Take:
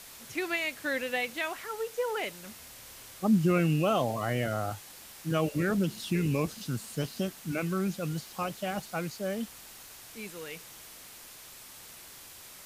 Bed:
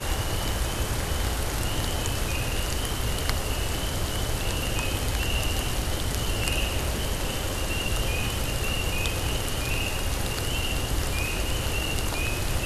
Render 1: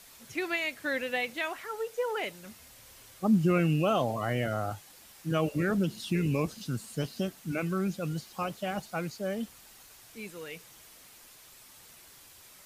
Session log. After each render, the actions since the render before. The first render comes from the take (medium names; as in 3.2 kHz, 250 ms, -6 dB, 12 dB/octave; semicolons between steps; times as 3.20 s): noise reduction 6 dB, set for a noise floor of -49 dBFS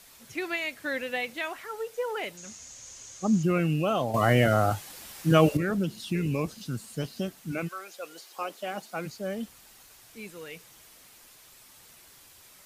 2.37–3.43 s: resonant low-pass 6.6 kHz, resonance Q 10; 4.14–5.57 s: gain +9 dB; 7.67–9.05 s: high-pass 680 Hz -> 170 Hz 24 dB/octave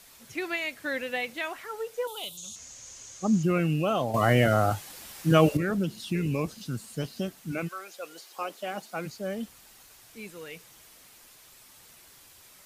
2.07–2.56 s: FFT filter 140 Hz 0 dB, 270 Hz -11 dB, 410 Hz -11 dB, 730 Hz -6 dB, 1.2 kHz -5 dB, 1.8 kHz -28 dB, 3.5 kHz +15 dB, 4.9 kHz -1 dB, 9.9 kHz +10 dB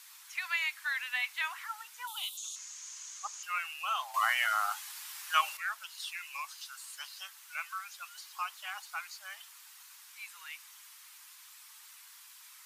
steep high-pass 920 Hz 48 dB/octave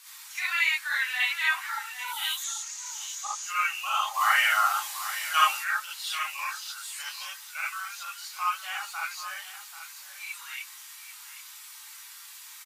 delay 786 ms -12.5 dB; gated-style reverb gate 90 ms rising, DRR -6.5 dB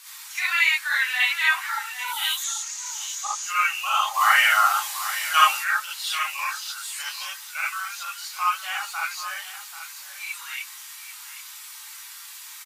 trim +5 dB